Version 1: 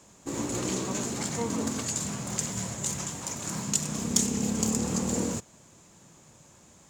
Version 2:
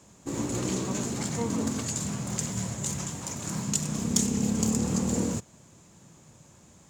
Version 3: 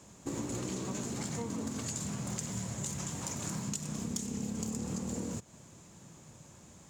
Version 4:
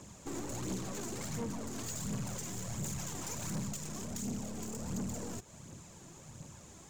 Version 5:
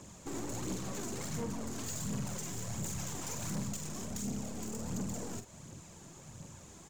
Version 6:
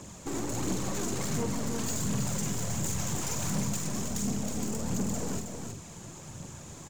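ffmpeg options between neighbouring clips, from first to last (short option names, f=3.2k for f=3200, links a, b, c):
-af "equalizer=f=110:t=o:w=2.7:g=5.5,volume=-1.5dB"
-af "acompressor=threshold=-34dB:ratio=6"
-af "aeval=exprs='(tanh(100*val(0)+0.35)-tanh(0.35))/100':c=same,aphaser=in_gain=1:out_gain=1:delay=3.1:decay=0.45:speed=1.4:type=triangular,volume=2.5dB"
-filter_complex "[0:a]asplit=2[a][b];[b]adelay=45,volume=-9dB[c];[a][c]amix=inputs=2:normalize=0"
-af "aecho=1:1:319:0.501,volume=6dB"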